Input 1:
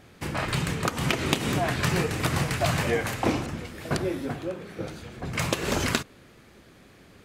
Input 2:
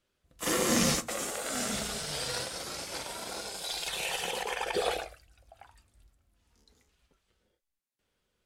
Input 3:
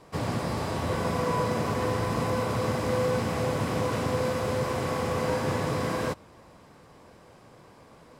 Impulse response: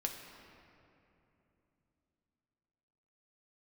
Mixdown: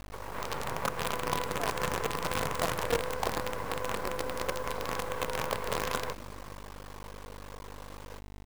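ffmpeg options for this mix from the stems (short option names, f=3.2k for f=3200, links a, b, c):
-filter_complex "[0:a]highshelf=f=4.2k:g=-9,volume=-9dB,asplit=2[a][b];[b]volume=-11.5dB[c];[1:a]highpass=190,acompressor=threshold=-45dB:ratio=2.5,adelay=1050,volume=-17.5dB[d];[2:a]highshelf=f=7.3k:g=4.5,acompressor=threshold=-32dB:ratio=10,volume=-0.5dB,asplit=2[e][f];[f]volume=-17dB[g];[a][e]amix=inputs=2:normalize=0,highpass=f=300:w=0.5412,highpass=f=300:w=1.3066,equalizer=f=320:t=q:w=4:g=-8,equalizer=f=470:t=q:w=4:g=5,equalizer=f=670:t=q:w=4:g=-6,equalizer=f=1k:t=q:w=4:g=6,lowpass=f=2k:w=0.5412,lowpass=f=2k:w=1.3066,acompressor=threshold=-39dB:ratio=2.5,volume=0dB[h];[3:a]atrim=start_sample=2205[i];[c][g]amix=inputs=2:normalize=0[j];[j][i]afir=irnorm=-1:irlink=0[k];[d][h][k]amix=inputs=3:normalize=0,dynaudnorm=f=100:g=7:m=7.5dB,aeval=exprs='val(0)+0.00794*(sin(2*PI*50*n/s)+sin(2*PI*2*50*n/s)/2+sin(2*PI*3*50*n/s)/3+sin(2*PI*4*50*n/s)/4+sin(2*PI*5*50*n/s)/5)':c=same,acrusher=bits=5:dc=4:mix=0:aa=0.000001"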